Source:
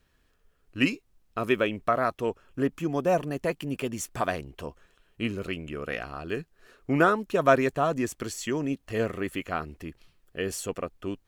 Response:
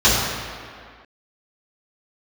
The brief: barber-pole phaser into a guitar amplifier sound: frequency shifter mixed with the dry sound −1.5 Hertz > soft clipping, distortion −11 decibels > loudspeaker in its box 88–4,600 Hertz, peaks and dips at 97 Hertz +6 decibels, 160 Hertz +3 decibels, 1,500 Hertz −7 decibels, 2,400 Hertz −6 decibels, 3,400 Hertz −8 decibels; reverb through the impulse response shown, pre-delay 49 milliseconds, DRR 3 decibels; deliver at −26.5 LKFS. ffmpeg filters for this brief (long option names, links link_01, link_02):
-filter_complex "[0:a]asplit=2[link_01][link_02];[1:a]atrim=start_sample=2205,adelay=49[link_03];[link_02][link_03]afir=irnorm=-1:irlink=0,volume=-27dB[link_04];[link_01][link_04]amix=inputs=2:normalize=0,asplit=2[link_05][link_06];[link_06]afreqshift=-1.5[link_07];[link_05][link_07]amix=inputs=2:normalize=1,asoftclip=threshold=-24dB,highpass=88,equalizer=frequency=97:width_type=q:width=4:gain=6,equalizer=frequency=160:width_type=q:width=4:gain=3,equalizer=frequency=1500:width_type=q:width=4:gain=-7,equalizer=frequency=2400:width_type=q:width=4:gain=-6,equalizer=frequency=3400:width_type=q:width=4:gain=-8,lowpass=frequency=4600:width=0.5412,lowpass=frequency=4600:width=1.3066,volume=7dB"